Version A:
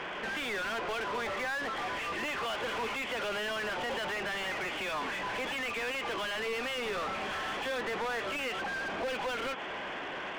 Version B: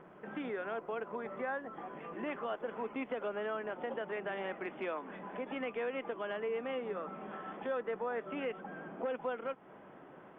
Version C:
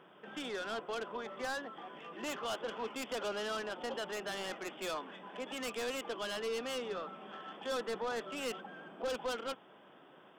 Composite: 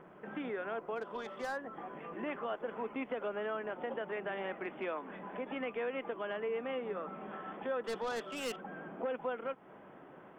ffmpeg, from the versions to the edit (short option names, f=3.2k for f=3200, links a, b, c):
-filter_complex "[2:a]asplit=2[a][b];[1:a]asplit=3[c][d][e];[c]atrim=end=1.19[f];[a]atrim=start=0.95:end=1.59[g];[d]atrim=start=1.35:end=7.842[h];[b]atrim=start=7.838:end=8.562[i];[e]atrim=start=8.558[j];[f][g]acrossfade=d=0.24:c1=tri:c2=tri[k];[k][h]acrossfade=d=0.24:c1=tri:c2=tri[l];[l][i]acrossfade=d=0.004:c1=hsin:c2=hsin[m];[m][j]acrossfade=d=0.004:c1=hsin:c2=hsin"